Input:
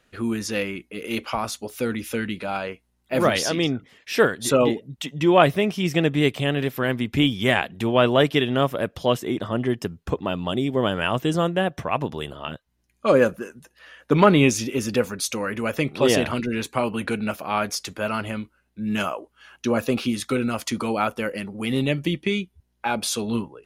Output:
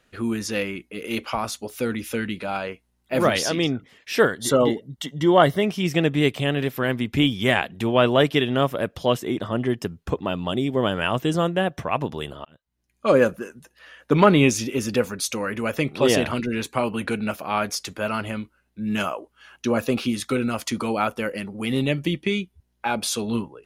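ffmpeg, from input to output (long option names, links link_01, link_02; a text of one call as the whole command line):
ffmpeg -i in.wav -filter_complex "[0:a]asettb=1/sr,asplit=3[link_01][link_02][link_03];[link_01]atrim=end=4.204[link_04];[link_02]atrim=start=4.2:end=5.63,asetpts=PTS-STARTPTS,afade=type=in:duration=0.004:curve=qsin,afade=type=out:start_time=1.426:duration=0.004:curve=qsin,asuperstop=centerf=2500:order=8:qfactor=5.4[link_05];[link_03]atrim=start=5.626[link_06];[link_04][link_05]acrossfade=duration=0.004:curve1=hsin:curve2=qsin[link_07];[link_07][link_06]acrossfade=duration=0.004:curve1=qsin:curve2=hsin,asplit=2[link_08][link_09];[link_08]atrim=end=12.45,asetpts=PTS-STARTPTS,afade=type=out:start_time=12.446:duration=0.004:curve=hsin[link_10];[link_09]atrim=start=12.45,asetpts=PTS-STARTPTS,afade=type=in:duration=0.66[link_11];[link_10][link_11]concat=n=2:v=0:a=1" out.wav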